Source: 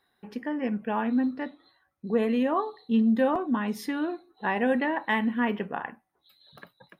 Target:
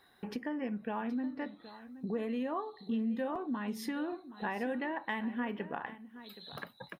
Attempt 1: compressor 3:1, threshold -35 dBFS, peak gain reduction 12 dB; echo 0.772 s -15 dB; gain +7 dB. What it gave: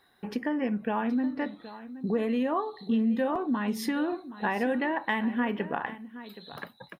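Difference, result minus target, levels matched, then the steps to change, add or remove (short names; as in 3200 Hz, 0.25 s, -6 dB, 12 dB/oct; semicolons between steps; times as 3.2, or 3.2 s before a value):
compressor: peak gain reduction -7.5 dB
change: compressor 3:1, threshold -46.5 dBFS, peak gain reduction 19.5 dB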